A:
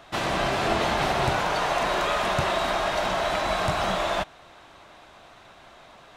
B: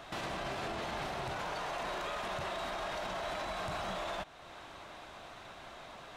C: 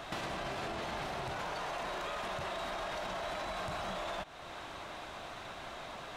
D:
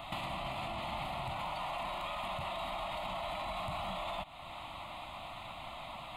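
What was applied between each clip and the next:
compressor 1.5:1, threshold -42 dBFS, peak gain reduction 8.5 dB; limiter -30 dBFS, peak gain reduction 11 dB
compressor, threshold -40 dBFS, peak gain reduction 5.5 dB; gain +4.5 dB
fixed phaser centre 1600 Hz, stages 6; gain +2.5 dB

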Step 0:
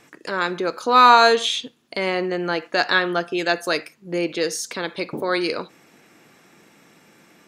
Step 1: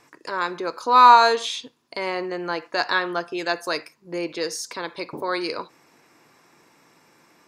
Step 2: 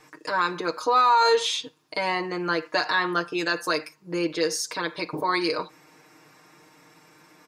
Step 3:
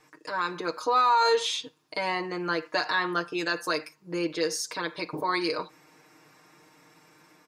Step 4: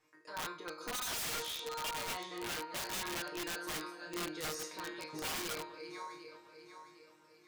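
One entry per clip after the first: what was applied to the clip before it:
thirty-one-band EQ 200 Hz -8 dB, 1000 Hz +9 dB, 3150 Hz -4 dB, 5000 Hz +5 dB; gain -4.5 dB
comb 6.5 ms, depth 87%; limiter -12 dBFS, peak gain reduction 11.5 dB
AGC gain up to 3.5 dB; gain -6.5 dB
regenerating reverse delay 0.377 s, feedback 61%, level -9 dB; resonator bank D#2 sus4, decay 0.41 s; wrapped overs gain 34.5 dB; gain +1 dB

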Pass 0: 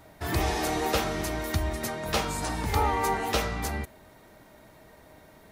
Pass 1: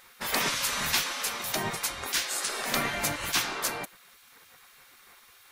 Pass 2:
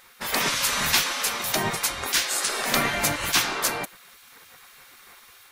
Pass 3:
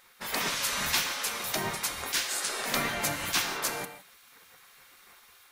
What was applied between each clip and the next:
spectral gate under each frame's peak -15 dB weak; gain +7 dB
AGC gain up to 3.5 dB; gain +2 dB
notches 50/100 Hz; non-linear reverb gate 0.19 s flat, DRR 9 dB; gain -6.5 dB

